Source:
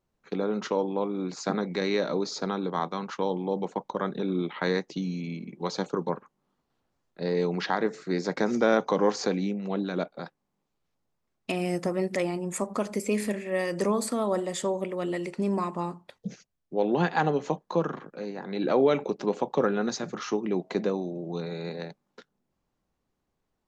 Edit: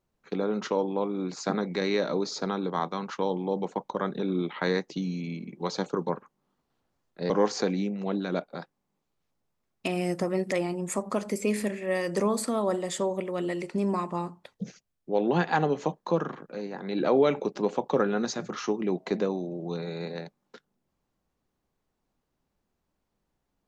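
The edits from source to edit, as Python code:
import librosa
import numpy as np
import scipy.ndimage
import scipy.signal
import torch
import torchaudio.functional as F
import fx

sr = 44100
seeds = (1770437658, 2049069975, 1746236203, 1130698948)

y = fx.edit(x, sr, fx.cut(start_s=7.3, length_s=1.64), tone=tone)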